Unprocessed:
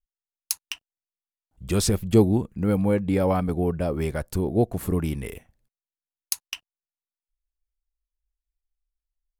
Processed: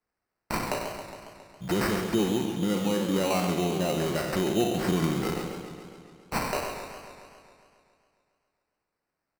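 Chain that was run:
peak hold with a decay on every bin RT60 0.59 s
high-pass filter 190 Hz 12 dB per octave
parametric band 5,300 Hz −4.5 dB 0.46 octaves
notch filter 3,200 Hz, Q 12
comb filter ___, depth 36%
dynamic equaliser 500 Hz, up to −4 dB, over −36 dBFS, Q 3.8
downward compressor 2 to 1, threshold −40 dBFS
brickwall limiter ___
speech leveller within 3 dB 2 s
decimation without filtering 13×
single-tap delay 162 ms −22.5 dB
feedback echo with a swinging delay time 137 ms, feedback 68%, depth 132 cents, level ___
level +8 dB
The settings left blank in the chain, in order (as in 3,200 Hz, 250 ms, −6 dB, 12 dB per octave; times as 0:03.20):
5.7 ms, −23 dBFS, −9 dB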